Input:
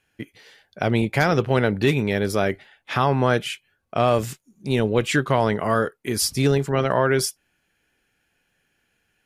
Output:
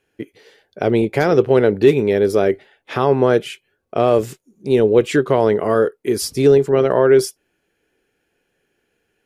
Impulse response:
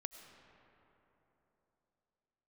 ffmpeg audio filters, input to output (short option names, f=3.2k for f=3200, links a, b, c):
-af "equalizer=f=410:w=1.3:g=13,volume=-2dB"